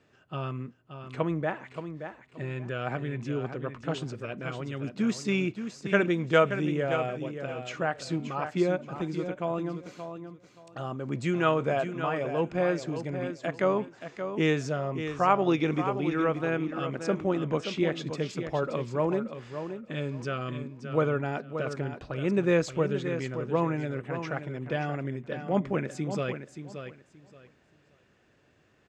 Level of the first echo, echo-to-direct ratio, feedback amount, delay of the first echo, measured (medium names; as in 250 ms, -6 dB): -9.0 dB, -9.0 dB, 21%, 576 ms